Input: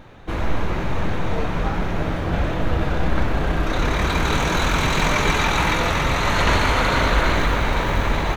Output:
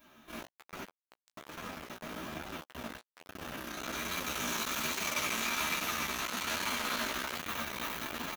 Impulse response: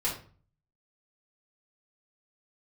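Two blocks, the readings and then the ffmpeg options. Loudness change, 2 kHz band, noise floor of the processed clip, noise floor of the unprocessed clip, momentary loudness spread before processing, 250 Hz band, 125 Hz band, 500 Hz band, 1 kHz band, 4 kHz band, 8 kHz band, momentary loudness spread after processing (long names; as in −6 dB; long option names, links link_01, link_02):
−14.0 dB, −14.0 dB, below −85 dBFS, −24 dBFS, 7 LU, −18.0 dB, −28.5 dB, −19.5 dB, −16.5 dB, −10.5 dB, −5.0 dB, 16 LU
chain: -filter_complex "[0:a]asplit=2[link_01][link_02];[link_02]adelay=180.8,volume=-26dB,highshelf=frequency=4000:gain=-4.07[link_03];[link_01][link_03]amix=inputs=2:normalize=0[link_04];[1:a]atrim=start_sample=2205,afade=type=out:start_time=0.4:duration=0.01,atrim=end_sample=18081,asetrate=57330,aresample=44100[link_05];[link_04][link_05]afir=irnorm=-1:irlink=0,asplit=2[link_06][link_07];[link_07]acontrast=36,volume=-2dB[link_08];[link_06][link_08]amix=inputs=2:normalize=0,equalizer=frequency=125:width_type=o:width=1:gain=-5,equalizer=frequency=250:width_type=o:width=1:gain=12,equalizer=frequency=500:width_type=o:width=1:gain=-7,equalizer=frequency=1000:width_type=o:width=1:gain=-4,equalizer=frequency=2000:width_type=o:width=1:gain=-7,equalizer=frequency=4000:width_type=o:width=1:gain=-8,equalizer=frequency=8000:width_type=o:width=1:gain=-10,volume=4dB,asoftclip=hard,volume=-4dB,aderivative,flanger=delay=10:depth=8.5:regen=7:speed=1.2:shape=triangular"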